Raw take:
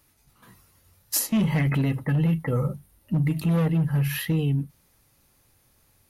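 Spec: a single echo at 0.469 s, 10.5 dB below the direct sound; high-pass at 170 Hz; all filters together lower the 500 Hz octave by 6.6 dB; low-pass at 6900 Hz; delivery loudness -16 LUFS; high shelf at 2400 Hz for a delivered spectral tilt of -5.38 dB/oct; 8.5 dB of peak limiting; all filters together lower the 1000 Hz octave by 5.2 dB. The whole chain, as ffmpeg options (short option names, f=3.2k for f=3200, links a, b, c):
-af "highpass=170,lowpass=6.9k,equalizer=f=500:t=o:g=-6.5,equalizer=f=1k:t=o:g=-5.5,highshelf=f=2.4k:g=3,alimiter=limit=-24dB:level=0:latency=1,aecho=1:1:469:0.299,volume=16.5dB"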